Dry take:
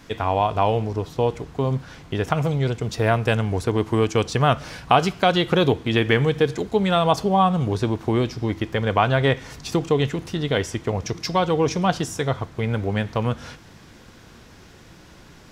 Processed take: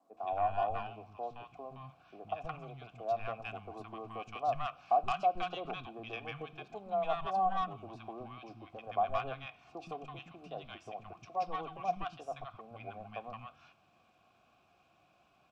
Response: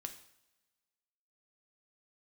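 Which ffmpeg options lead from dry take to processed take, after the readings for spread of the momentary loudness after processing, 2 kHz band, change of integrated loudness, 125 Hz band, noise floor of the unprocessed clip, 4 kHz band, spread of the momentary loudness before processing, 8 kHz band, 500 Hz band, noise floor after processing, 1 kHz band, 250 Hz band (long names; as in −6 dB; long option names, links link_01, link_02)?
16 LU, −19.5 dB, −16.0 dB, −27.5 dB, −47 dBFS, −22.0 dB, 8 LU, below −25 dB, −17.5 dB, −69 dBFS, −10.5 dB, −26.5 dB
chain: -filter_complex "[0:a]asplit=3[link_01][link_02][link_03];[link_01]bandpass=frequency=730:width_type=q:width=8,volume=0dB[link_04];[link_02]bandpass=frequency=1090:width_type=q:width=8,volume=-6dB[link_05];[link_03]bandpass=frequency=2440:width_type=q:width=8,volume=-9dB[link_06];[link_04][link_05][link_06]amix=inputs=3:normalize=0,equalizer=frequency=460:width_type=o:width=0.56:gain=-7.5,aeval=exprs='0.335*(cos(1*acos(clip(val(0)/0.335,-1,1)))-cos(1*PI/2))+0.00944*(cos(8*acos(clip(val(0)/0.335,-1,1)))-cos(8*PI/2))':channel_layout=same,acrossover=split=250|1100[link_07][link_08][link_09];[link_07]acontrast=84[link_10];[link_10][link_08][link_09]amix=inputs=3:normalize=0,acrossover=split=230|960[link_11][link_12][link_13];[link_11]adelay=120[link_14];[link_13]adelay=170[link_15];[link_14][link_12][link_15]amix=inputs=3:normalize=0,volume=-4dB" -ar 32000 -c:a sbc -b:a 128k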